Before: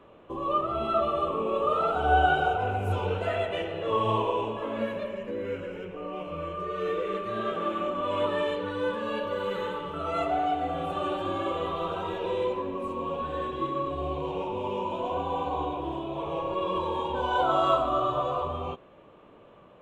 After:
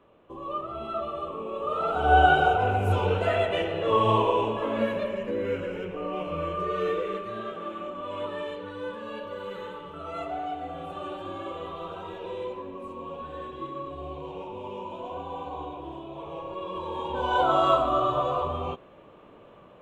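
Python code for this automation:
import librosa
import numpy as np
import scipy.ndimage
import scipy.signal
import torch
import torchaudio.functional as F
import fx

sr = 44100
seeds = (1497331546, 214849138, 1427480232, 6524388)

y = fx.gain(x, sr, db=fx.line((1.56, -6.0), (2.19, 4.0), (6.74, 4.0), (7.55, -6.0), (16.73, -6.0), (17.34, 2.0)))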